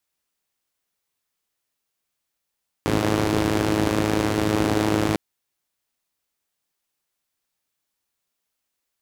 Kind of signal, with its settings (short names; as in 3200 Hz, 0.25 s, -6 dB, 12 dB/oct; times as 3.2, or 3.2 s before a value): four-cylinder engine model, steady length 2.30 s, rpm 3200, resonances 86/150/280 Hz